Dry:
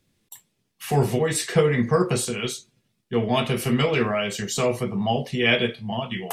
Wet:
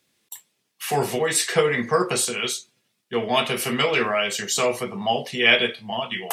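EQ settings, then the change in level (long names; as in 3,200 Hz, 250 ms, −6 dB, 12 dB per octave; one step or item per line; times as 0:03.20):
high-pass filter 710 Hz 6 dB per octave
+5.0 dB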